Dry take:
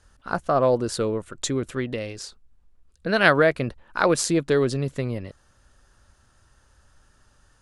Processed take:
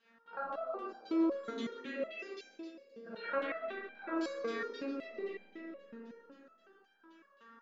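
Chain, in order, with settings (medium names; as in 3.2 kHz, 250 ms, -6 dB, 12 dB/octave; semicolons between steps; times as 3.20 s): FFT band-pass 180–7400 Hz; reverse; compression 5:1, threshold -34 dBFS, peak gain reduction 20 dB; reverse; Schroeder reverb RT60 1.4 s, combs from 27 ms, DRR -6 dB; LFO low-pass saw down 3.8 Hz 940–3500 Hz; on a send: two-band feedback delay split 580 Hz, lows 470 ms, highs 142 ms, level -10.5 dB; on the sum: resonator arpeggio 5.4 Hz 230–790 Hz; trim +4.5 dB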